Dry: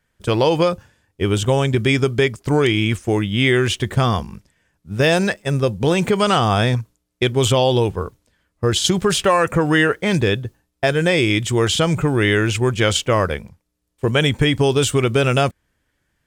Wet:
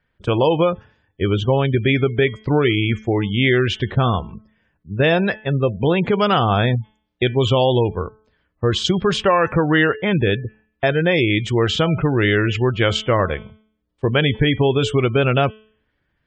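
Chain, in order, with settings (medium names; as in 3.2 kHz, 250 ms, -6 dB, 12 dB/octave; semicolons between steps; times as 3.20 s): low-pass 4.2 kHz 12 dB/octave; de-hum 216.5 Hz, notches 16; spectral gate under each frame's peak -30 dB strong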